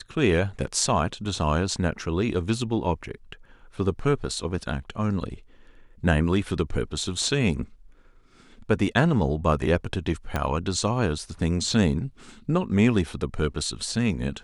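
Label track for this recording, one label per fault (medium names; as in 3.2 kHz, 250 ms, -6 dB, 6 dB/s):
10.360000	10.360000	pop -12 dBFS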